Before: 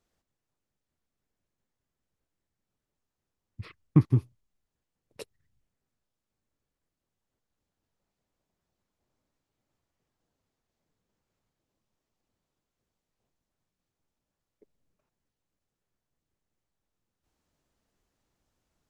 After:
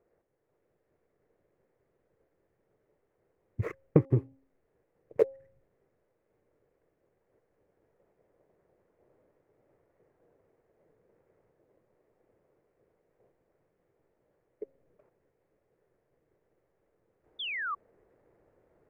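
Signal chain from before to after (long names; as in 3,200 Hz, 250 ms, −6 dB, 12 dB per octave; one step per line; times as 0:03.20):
running median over 15 samples
downward compressor 6 to 1, threshold −32 dBFS, peak gain reduction 17.5 dB
octave-band graphic EQ 125/250/500/2,000/4,000 Hz +4/−8/+9/+11/−7 dB
sound drawn into the spectrogram fall, 0:17.39–0:17.75, 1,100–3,600 Hz −39 dBFS
automatic gain control gain up to 6.5 dB
parametric band 360 Hz +14.5 dB 2.1 octaves
hum removal 269.4 Hz, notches 3
level −4 dB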